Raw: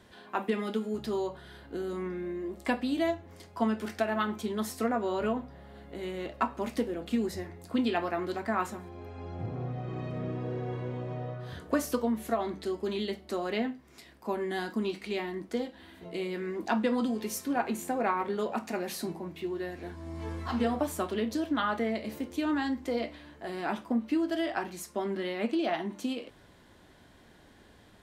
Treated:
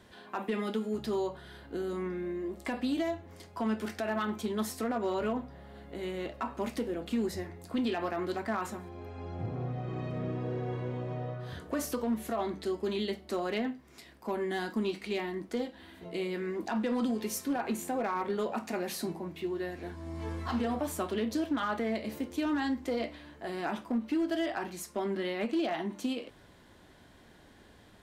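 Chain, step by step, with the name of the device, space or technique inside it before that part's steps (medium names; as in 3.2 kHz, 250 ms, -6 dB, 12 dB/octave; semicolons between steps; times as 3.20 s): limiter into clipper (peak limiter -22.5 dBFS, peak gain reduction 8 dB; hard clipper -24.5 dBFS, distortion -27 dB)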